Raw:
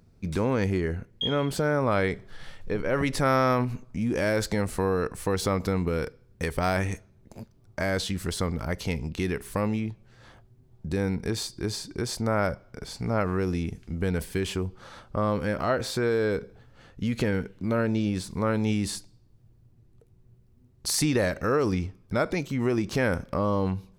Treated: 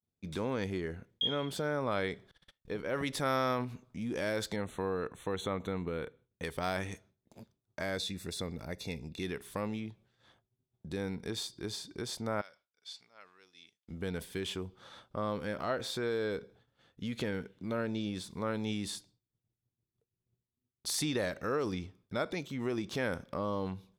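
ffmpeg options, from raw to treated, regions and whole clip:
ffmpeg -i in.wav -filter_complex "[0:a]asettb=1/sr,asplit=3[link_01][link_02][link_03];[link_01]atrim=end=2.314[link_04];[link_02]atrim=start=2.31:end=3.51,asetpts=PTS-STARTPTS,afade=type=in:duration=0.004:curve=qsin,afade=type=out:start_time=1.196:duration=0.004:curve=qsin,highshelf=frequency=8500:gain=5,agate=range=-27dB:threshold=-36dB:ratio=16:release=100:detection=peak[link_05];[link_03]atrim=start=3.506[link_06];[link_04][link_05]acrossfade=duration=0.004:curve1=hsin:curve2=qsin[link_07];[link_07][link_06]acrossfade=duration=0.004:curve1=qsin:curve2=hsin,asettb=1/sr,asplit=3[link_08][link_09][link_10];[link_08]atrim=end=4.564[link_11];[link_09]atrim=start=4.56:end=6.44,asetpts=PTS-STARTPTS,afade=type=in:duration=0.004:curve=qsin,afade=type=out:start_time=1.876:duration=0.004:curve=qsin,asuperstop=centerf=5000:order=12:qfactor=3.1,highshelf=frequency=7000:gain=-11[link_12];[link_10]atrim=start=6.436[link_13];[link_11][link_12]acrossfade=duration=0.004:curve1=hsin:curve2=qsin[link_14];[link_14][link_13]acrossfade=duration=0.004:curve1=qsin:curve2=hsin,asettb=1/sr,asplit=3[link_15][link_16][link_17];[link_15]atrim=end=7.964[link_18];[link_16]atrim=start=7.96:end=9.23,asetpts=PTS-STARTPTS,afade=type=in:duration=0.004:curve=qsin,afade=type=out:start_time=1.266:duration=0.004:curve=qsin,asuperstop=centerf=3100:order=20:qfactor=5.5,equalizer=frequency=1200:width_type=o:width=1:gain=-7[link_19];[link_17]atrim=start=9.226[link_20];[link_18][link_19]acrossfade=duration=0.004:curve1=hsin:curve2=qsin[link_21];[link_21][link_20]acrossfade=duration=0.004:curve1=qsin:curve2=hsin,asettb=1/sr,asplit=3[link_22][link_23][link_24];[link_22]atrim=end=12.414[link_25];[link_23]atrim=start=12.41:end=13.88,asetpts=PTS-STARTPTS,afade=type=in:duration=0.004:curve=qsin,afade=type=out:start_time=1.466:duration=0.004:curve=qsin,acompressor=threshold=-29dB:ratio=2.5:attack=3.2:release=140:knee=1:detection=peak,bandpass=frequency=4000:width_type=q:width=0.99,aeval=exprs='val(0)+0.0001*(sin(2*PI*50*n/s)+sin(2*PI*2*50*n/s)/2+sin(2*PI*3*50*n/s)/3+sin(2*PI*4*50*n/s)/4+sin(2*PI*5*50*n/s)/5)':channel_layout=same[link_26];[link_24]atrim=start=13.876[link_27];[link_25][link_26]acrossfade=duration=0.004:curve1=hsin:curve2=qsin[link_28];[link_28][link_27]acrossfade=duration=0.004:curve1=qsin:curve2=hsin,equalizer=frequency=3500:width_type=o:width=0.23:gain=10,agate=range=-33dB:threshold=-45dB:ratio=3:detection=peak,highpass=frequency=150:poles=1,volume=-8dB" out.wav

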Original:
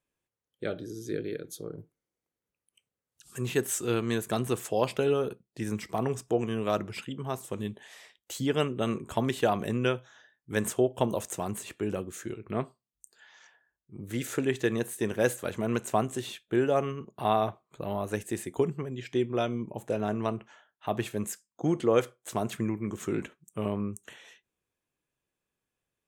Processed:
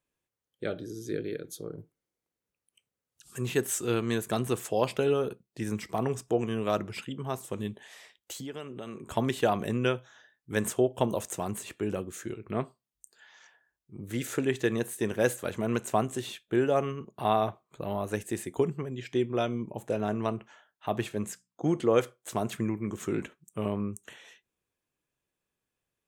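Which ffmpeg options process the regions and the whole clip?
ffmpeg -i in.wav -filter_complex "[0:a]asettb=1/sr,asplit=3[link_01][link_02][link_03];[link_01]atrim=end=8.324[link_04];[link_02]atrim=start=8.32:end=9.07,asetpts=PTS-STARTPTS,afade=type=in:duration=0.004:curve=qsin,afade=type=out:start_time=0.746:duration=0.004:curve=qsin,highpass=90,bass=frequency=250:gain=-3,treble=frequency=4000:gain=0,acompressor=threshold=-37dB:ratio=4:attack=3.2:release=140:knee=1:detection=peak[link_05];[link_03]atrim=start=9.066[link_06];[link_04][link_05]acrossfade=duration=0.004:curve1=hsin:curve2=qsin[link_07];[link_07][link_06]acrossfade=duration=0.004:curve1=qsin:curve2=hsin,asettb=1/sr,asplit=3[link_08][link_09][link_10];[link_08]atrim=end=21.064[link_11];[link_09]atrim=start=21.06:end=21.67,asetpts=PTS-STARTPTS,afade=type=in:duration=0.004:curve=qsin,afade=type=out:start_time=0.606:duration=0.004:curve=qsin,highshelf=frequency=11000:gain=-11.5,bandreject=frequency=60:width_type=h:width=6,bandreject=frequency=120:width_type=h:width=6,bandreject=frequency=180:width_type=h:width=6,bandreject=frequency=240:width_type=h:width=6[link_12];[link_10]atrim=start=21.666[link_13];[link_11][link_12]acrossfade=duration=0.004:curve1=hsin:curve2=qsin[link_14];[link_14][link_13]acrossfade=duration=0.004:curve1=qsin:curve2=hsin" out.wav

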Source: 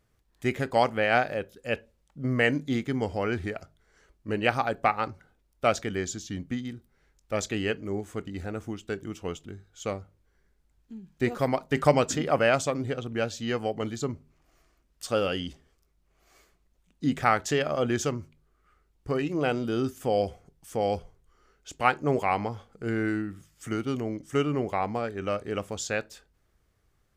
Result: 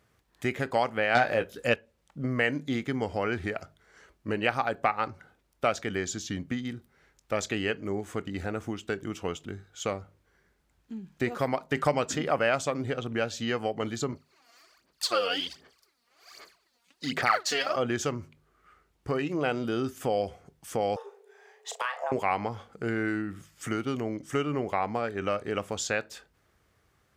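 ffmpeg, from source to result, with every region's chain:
ffmpeg -i in.wav -filter_complex "[0:a]asettb=1/sr,asplit=3[link_01][link_02][link_03];[link_01]atrim=end=1.154[link_04];[link_02]atrim=start=1.15:end=1.74,asetpts=PTS-STARTPTS,afade=type=in:duration=0.004:curve=qsin,afade=type=out:start_time=0.586:duration=0.004:curve=qsin,aeval=exprs='0.355*sin(PI/2*1.58*val(0)/0.355)':channel_layout=same,asplit=2[link_05][link_06];[link_06]adelay=17,volume=-8dB[link_07];[link_05][link_07]amix=inputs=2:normalize=0,atrim=end_sample=26019[link_08];[link_03]atrim=start=1.736[link_09];[link_04][link_08]acrossfade=duration=0.004:curve1=hsin:curve2=qsin[link_10];[link_10][link_09]acrossfade=duration=0.004:curve1=qsin:curve2=hsin,asettb=1/sr,asplit=3[link_11][link_12][link_13];[link_11]atrim=end=14.124[link_14];[link_12]atrim=start=14.12:end=17.76,asetpts=PTS-STARTPTS,afade=type=in:duration=0.004:curve=qsin,afade=type=out:start_time=3.636:duration=0.004:curve=qsin,highpass=frequency=670:poles=1,equalizer=frequency=4500:width_type=o:width=0.26:gain=11.5,aphaser=in_gain=1:out_gain=1:delay=4.3:decay=0.75:speed=1.3:type=sinusoidal[link_15];[link_13]atrim=start=17.756[link_16];[link_14][link_15]acrossfade=duration=0.004:curve1=hsin:curve2=qsin[link_17];[link_17][link_16]acrossfade=duration=0.004:curve1=qsin:curve2=hsin,asettb=1/sr,asplit=3[link_18][link_19][link_20];[link_18]atrim=end=20.964[link_21];[link_19]atrim=start=20.96:end=22.12,asetpts=PTS-STARTPTS,afade=type=in:duration=0.004:curve=qsin,afade=type=out:start_time=1.156:duration=0.004:curve=qsin,afreqshift=380,acompressor=threshold=-31dB:ratio=10:attack=3.2:release=140:knee=1:detection=peak,asplit=2[link_22][link_23];[link_23]adelay=37,volume=-9dB[link_24];[link_22][link_24]amix=inputs=2:normalize=0,atrim=end_sample=51156[link_25];[link_20]atrim=start=22.116[link_26];[link_21][link_25]acrossfade=duration=0.004:curve1=hsin:curve2=qsin[link_27];[link_27][link_26]acrossfade=duration=0.004:curve1=qsin:curve2=hsin,highpass=71,acompressor=threshold=-35dB:ratio=2,equalizer=frequency=1500:width=0.4:gain=4.5,volume=3dB" out.wav

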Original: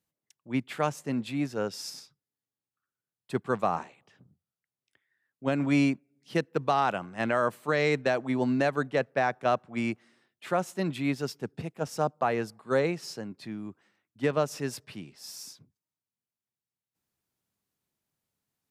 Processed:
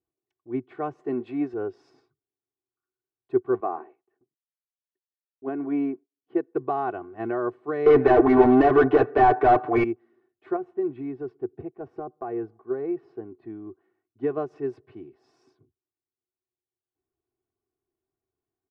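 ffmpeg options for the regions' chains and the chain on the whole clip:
ffmpeg -i in.wav -filter_complex "[0:a]asettb=1/sr,asplit=3[link_01][link_02][link_03];[link_01]atrim=end=0.994[link_04];[link_02]atrim=start=0.99:end=1.54,asetpts=PTS-STARTPTS,afade=type=in:duration=0.004:curve=qsin,afade=type=out:start_time=0.546:duration=0.004:curve=qsin,highpass=frequency=350:poles=1,acontrast=59[link_05];[link_03]atrim=start=1.536[link_06];[link_04][link_05]acrossfade=duration=0.004:curve1=hsin:curve2=qsin[link_07];[link_07][link_06]acrossfade=duration=0.004:curve1=qsin:curve2=hsin,asettb=1/sr,asplit=3[link_08][link_09][link_10];[link_08]atrim=end=3.604[link_11];[link_09]atrim=start=3.6:end=6.55,asetpts=PTS-STARTPTS,afade=type=in:duration=0.004:curve=qsin,afade=type=out:start_time=2.946:duration=0.004:curve=qsin,highpass=240,lowpass=2500,agate=range=-33dB:threshold=-58dB:ratio=3:release=100:detection=peak[link_12];[link_10]atrim=start=6.546[link_13];[link_11][link_12]acrossfade=duration=0.004:curve1=hsin:curve2=qsin[link_14];[link_14][link_13]acrossfade=duration=0.004:curve1=qsin:curve2=hsin,asettb=1/sr,asplit=3[link_15][link_16][link_17];[link_15]atrim=end=7.864[link_18];[link_16]atrim=start=7.86:end=9.84,asetpts=PTS-STARTPTS,afade=type=in:duration=0.004:curve=qsin,afade=type=out:start_time=1.976:duration=0.004:curve=qsin,aecho=1:1:6.8:0.99,atrim=end_sample=87318,asplit=2[link_19][link_20];[link_20]highpass=frequency=720:poles=1,volume=34dB,asoftclip=type=tanh:threshold=-8.5dB[link_21];[link_19][link_21]amix=inputs=2:normalize=0,lowpass=frequency=4000:poles=1,volume=-6dB[link_22];[link_17]atrim=start=9.836[link_23];[link_18][link_22]acrossfade=duration=0.004:curve1=hsin:curve2=qsin[link_24];[link_24][link_23]acrossfade=duration=0.004:curve1=qsin:curve2=hsin,asettb=1/sr,asplit=3[link_25][link_26][link_27];[link_25]atrim=end=10.564[link_28];[link_26]atrim=start=10.56:end=13.5,asetpts=PTS-STARTPTS,afade=type=in:duration=0.004:curve=qsin,afade=type=out:start_time=2.936:duration=0.004:curve=qsin,equalizer=frequency=6700:width_type=o:width=1.5:gain=-14.5,acompressor=threshold=-28dB:ratio=4:attack=3.2:release=140:knee=1:detection=peak[link_29];[link_27]atrim=start=13.496[link_30];[link_28][link_29]acrossfade=duration=0.004:curve1=hsin:curve2=qsin[link_31];[link_31][link_30]acrossfade=duration=0.004:curve1=qsin:curve2=hsin,lowpass=1100,equalizer=frequency=370:width=5.6:gain=12,aecho=1:1:2.7:0.81,volume=-3.5dB" out.wav

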